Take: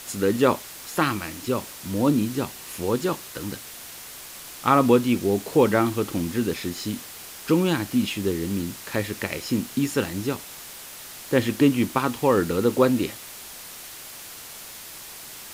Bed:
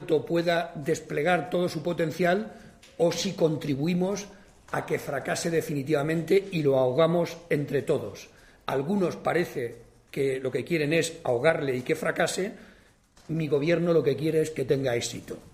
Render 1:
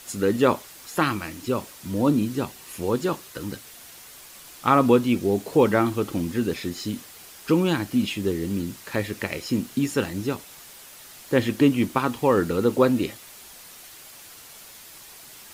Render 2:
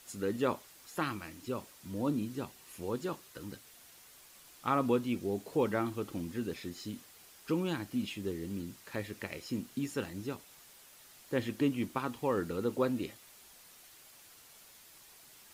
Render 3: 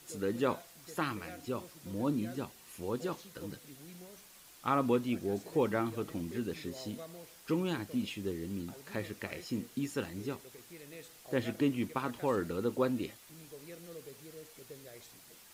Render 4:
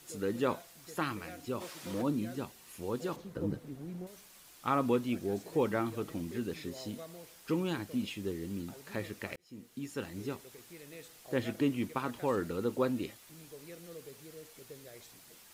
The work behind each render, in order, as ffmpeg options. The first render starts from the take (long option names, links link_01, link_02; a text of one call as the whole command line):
ffmpeg -i in.wav -af "afftdn=noise_reduction=6:noise_floor=-41" out.wav
ffmpeg -i in.wav -af "volume=-12dB" out.wav
ffmpeg -i in.wav -i bed.wav -filter_complex "[1:a]volume=-26dB[link_01];[0:a][link_01]amix=inputs=2:normalize=0" out.wav
ffmpeg -i in.wav -filter_complex "[0:a]asplit=3[link_01][link_02][link_03];[link_01]afade=type=out:start_time=1.6:duration=0.02[link_04];[link_02]asplit=2[link_05][link_06];[link_06]highpass=frequency=720:poles=1,volume=18dB,asoftclip=type=tanh:threshold=-25dB[link_07];[link_05][link_07]amix=inputs=2:normalize=0,lowpass=frequency=4300:poles=1,volume=-6dB,afade=type=in:start_time=1.6:duration=0.02,afade=type=out:start_time=2.01:duration=0.02[link_08];[link_03]afade=type=in:start_time=2.01:duration=0.02[link_09];[link_04][link_08][link_09]amix=inputs=3:normalize=0,asettb=1/sr,asplit=3[link_10][link_11][link_12];[link_10]atrim=end=3.164[link_13];[link_11]atrim=start=3.16:end=4.07,asetpts=PTS-STARTPTS,afade=type=in:duration=0.004:curve=qsin,afade=type=out:start_time=0.906:duration=0.004:curve=qsin,tiltshelf=frequency=1400:gain=10[link_14];[link_12]atrim=start=4.066[link_15];[link_13][link_14]acrossfade=duration=0.004:curve1=hsin:curve2=qsin[link_16];[link_16][link_15]acrossfade=duration=0.004:curve1=qsin:curve2=hsin,asplit=2[link_17][link_18];[link_17]atrim=end=9.36,asetpts=PTS-STARTPTS,afade=type=out:start_time=9.356:duration=0.004:curve=hsin[link_19];[link_18]atrim=start=9.36,asetpts=PTS-STARTPTS,afade=type=in:duration=0.85[link_20];[link_19][link_20]concat=n=2:v=0:a=1" out.wav